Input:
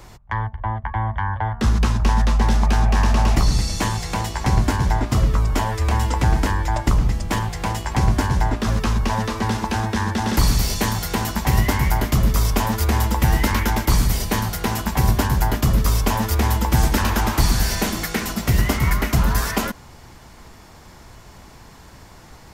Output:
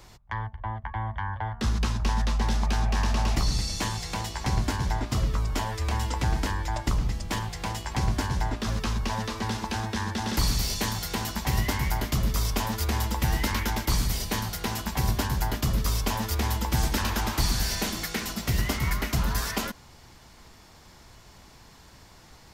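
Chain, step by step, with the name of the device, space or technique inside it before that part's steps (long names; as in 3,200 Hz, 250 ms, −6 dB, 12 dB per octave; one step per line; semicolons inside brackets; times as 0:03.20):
presence and air boost (parametric band 4,200 Hz +5.5 dB 1.6 octaves; high-shelf EQ 12,000 Hz +3 dB)
level −8.5 dB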